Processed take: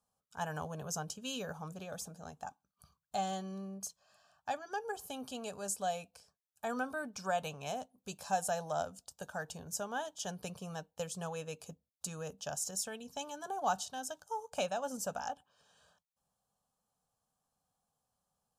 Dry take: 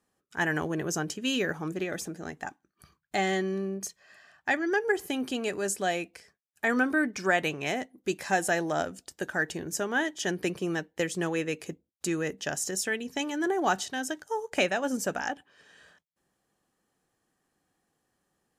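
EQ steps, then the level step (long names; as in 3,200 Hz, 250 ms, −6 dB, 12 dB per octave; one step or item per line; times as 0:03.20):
phaser with its sweep stopped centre 820 Hz, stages 4
−4.5 dB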